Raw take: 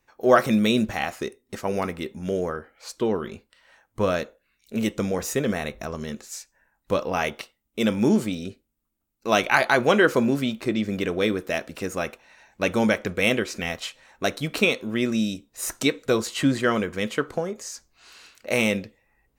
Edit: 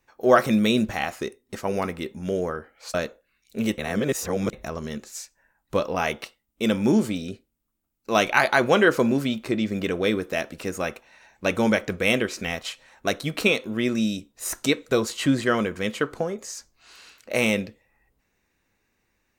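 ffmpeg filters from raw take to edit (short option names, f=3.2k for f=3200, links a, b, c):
-filter_complex "[0:a]asplit=4[a][b][c][d];[a]atrim=end=2.942[e];[b]atrim=start=4.108:end=4.952[f];[c]atrim=start=4.948:end=5.702,asetpts=PTS-STARTPTS,areverse[g];[d]atrim=start=5.698[h];[e][f]acrossfade=d=0.004:c1=hsin:c2=hsin[i];[i][g]acrossfade=d=0.004:c1=hsin:c2=hsin[j];[j][h]acrossfade=d=0.004:c1=hsin:c2=hsin"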